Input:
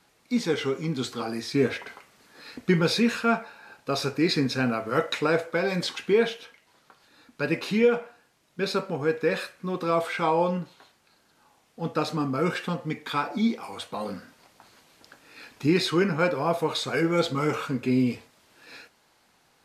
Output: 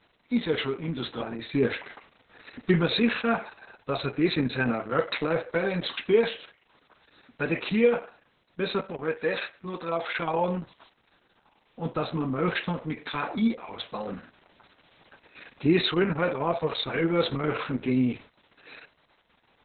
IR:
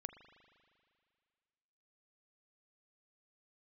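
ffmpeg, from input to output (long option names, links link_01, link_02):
-filter_complex "[0:a]asettb=1/sr,asplit=3[link_01][link_02][link_03];[link_01]atrim=end=8.854[link_04];[link_02]atrim=start=8.85:end=10.2,asetpts=PTS-STARTPTS,afade=type=in:duration=0.004:curve=qsin,afade=type=out:start_time=1.346:duration=0.004:curve=qsin,lowshelf=frequency=360:gain=-6.5[link_05];[link_03]atrim=start=10.196[link_06];[link_04][link_05]acrossfade=duration=0.004:curve1=hsin:curve2=qsin[link_07];[link_07][link_06]acrossfade=duration=0.004:curve1=qsin:curve2=hsin" -ar 48000 -c:a libopus -b:a 6k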